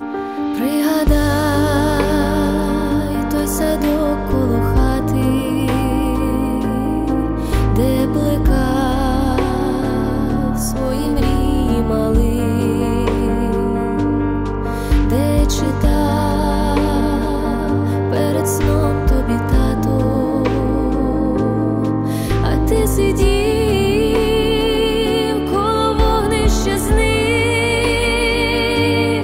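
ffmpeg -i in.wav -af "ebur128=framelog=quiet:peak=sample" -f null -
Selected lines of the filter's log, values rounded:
Integrated loudness:
  I:         -16.8 LUFS
  Threshold: -26.8 LUFS
Loudness range:
  LRA:         1.9 LU
  Threshold: -36.9 LUFS
  LRA low:   -17.6 LUFS
  LRA high:  -15.8 LUFS
Sample peak:
  Peak:       -4.4 dBFS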